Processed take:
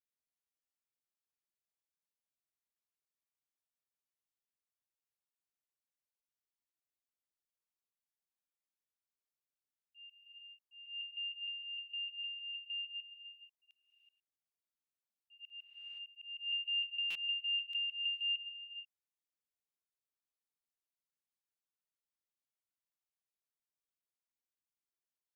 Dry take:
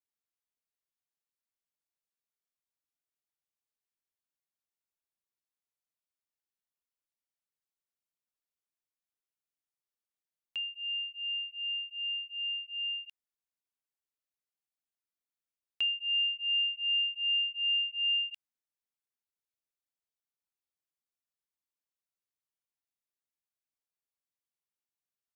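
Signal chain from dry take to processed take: slices played last to first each 153 ms, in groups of 5; gated-style reverb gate 500 ms rising, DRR 10 dB; slow attack 310 ms; buffer glitch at 17.10 s, samples 256, times 8; trim -6.5 dB

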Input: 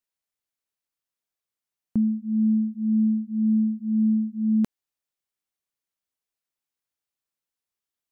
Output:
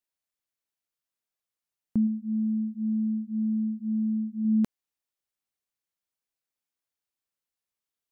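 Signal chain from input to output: 2.06–4.45 s: compression, threshold -23 dBFS, peak gain reduction 5 dB; trim -2 dB

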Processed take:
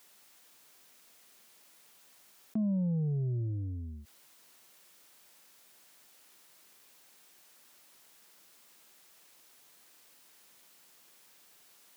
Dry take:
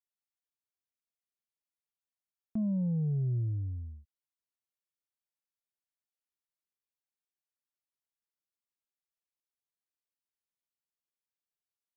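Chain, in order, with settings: high-pass 170 Hz 12 dB/octave; level flattener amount 50%; trim +2 dB

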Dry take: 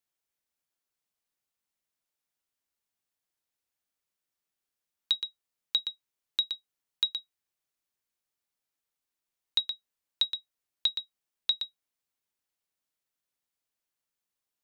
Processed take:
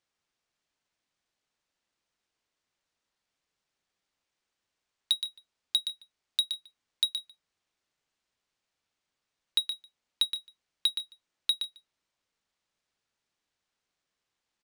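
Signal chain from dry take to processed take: treble shelf 2.1 kHz +10.5 dB; delay 147 ms -21.5 dB; decimation joined by straight lines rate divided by 3×; trim -6 dB

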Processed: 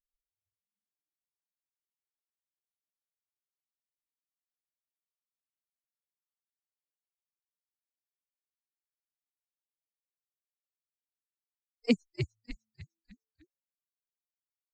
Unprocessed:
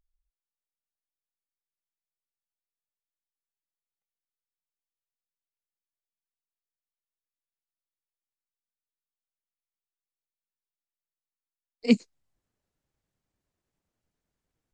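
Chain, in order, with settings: expander on every frequency bin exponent 3; compression, threshold -20 dBFS, peak gain reduction 5.5 dB; frequency-shifting echo 301 ms, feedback 41%, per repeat -110 Hz, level -7.5 dB

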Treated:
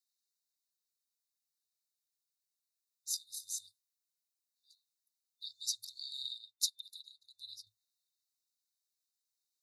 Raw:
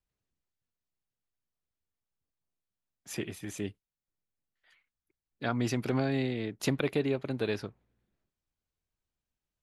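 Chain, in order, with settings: LFO high-pass saw down 0.64 Hz 730–2400 Hz; FFT band-reject 110–3600 Hz; 6.38–7.67 s: upward expansion 1.5:1, over -57 dBFS; trim +6.5 dB

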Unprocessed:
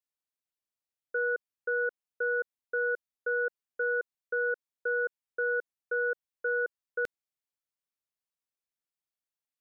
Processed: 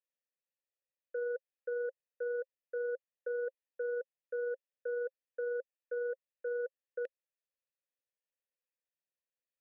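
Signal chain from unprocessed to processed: peak limiter -29.5 dBFS, peak gain reduction 7 dB; vowel filter e; trim +7.5 dB

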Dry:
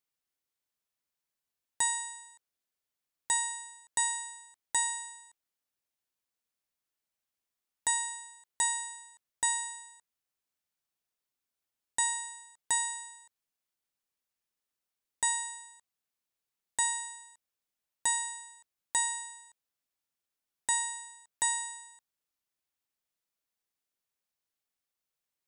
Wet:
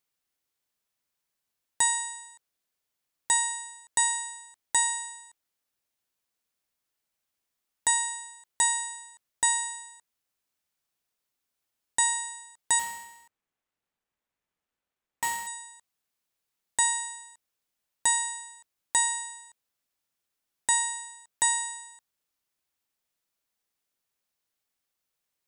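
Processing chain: 12.79–15.47 s: median filter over 9 samples; trim +5 dB

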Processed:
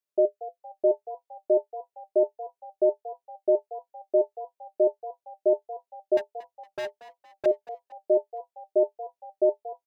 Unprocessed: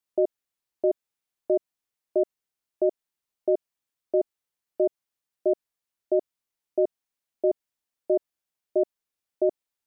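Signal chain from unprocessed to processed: bass shelf 280 Hz -5 dB; small resonant body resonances 410/600 Hz, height 15 dB, ringing for 100 ms; 6.17–7.46 s: overload inside the chain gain 22.5 dB; on a send: frequency-shifting echo 231 ms, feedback 45%, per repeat +92 Hz, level -16 dB; on the sum: trim -7 dB

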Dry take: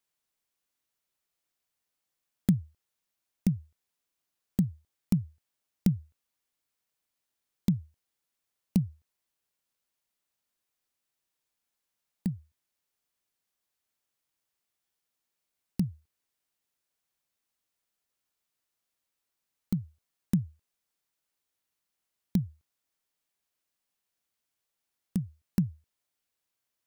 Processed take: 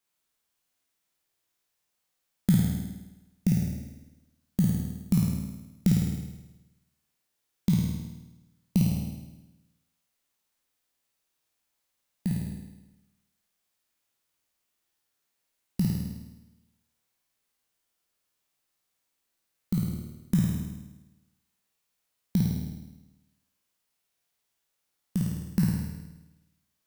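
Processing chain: spectral sustain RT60 0.72 s; flutter echo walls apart 9 m, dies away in 1 s

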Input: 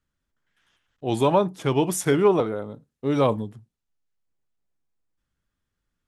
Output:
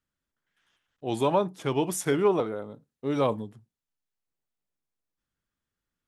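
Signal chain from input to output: bass shelf 100 Hz -8 dB; trim -4 dB

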